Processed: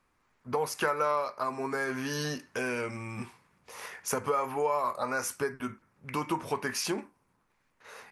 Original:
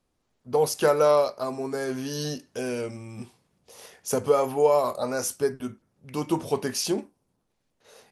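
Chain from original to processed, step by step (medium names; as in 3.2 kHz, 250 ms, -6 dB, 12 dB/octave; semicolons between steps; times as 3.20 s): high-order bell 1.5 kHz +11 dB; compression 2.5:1, threshold -31 dBFS, peak gain reduction 13 dB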